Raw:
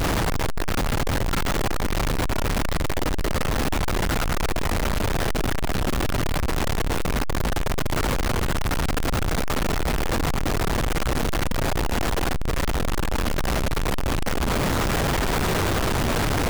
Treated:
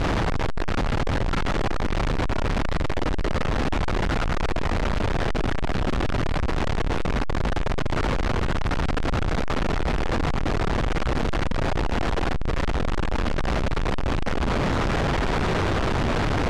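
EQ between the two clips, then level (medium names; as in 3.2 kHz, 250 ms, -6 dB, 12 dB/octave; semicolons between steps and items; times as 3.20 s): distance through air 75 m; treble shelf 6.9 kHz -8 dB; 0.0 dB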